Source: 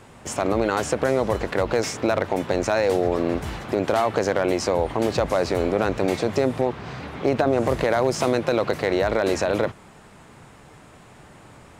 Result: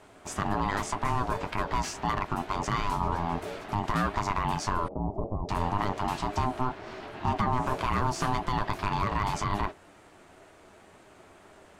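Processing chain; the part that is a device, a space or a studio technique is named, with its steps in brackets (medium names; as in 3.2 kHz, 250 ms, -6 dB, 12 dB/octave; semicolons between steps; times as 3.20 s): alien voice (ring modulator 510 Hz; flange 1.9 Hz, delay 9.3 ms, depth 2.4 ms, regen -44%); 4.88–5.49 s: inverse Chebyshev low-pass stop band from 1.5 kHz, stop band 40 dB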